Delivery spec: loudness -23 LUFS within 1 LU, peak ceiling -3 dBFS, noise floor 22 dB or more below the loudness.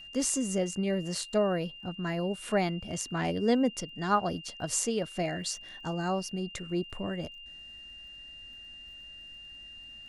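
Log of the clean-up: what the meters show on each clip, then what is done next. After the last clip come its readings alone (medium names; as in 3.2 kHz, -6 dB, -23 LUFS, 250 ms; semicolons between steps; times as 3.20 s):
tick rate 31 per s; steady tone 2.8 kHz; tone level -45 dBFS; loudness -31.5 LUFS; peak level -12.5 dBFS; loudness target -23.0 LUFS
-> de-click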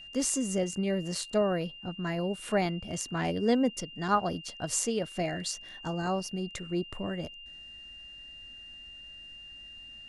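tick rate 0 per s; steady tone 2.8 kHz; tone level -45 dBFS
-> band-stop 2.8 kHz, Q 30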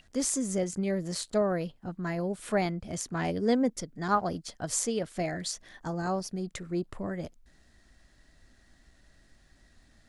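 steady tone not found; loudness -31.5 LUFS; peak level -12.5 dBFS; loudness target -23.0 LUFS
-> trim +8.5 dB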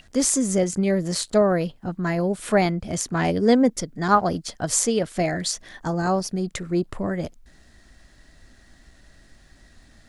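loudness -23.0 LUFS; peak level -4.0 dBFS; noise floor -54 dBFS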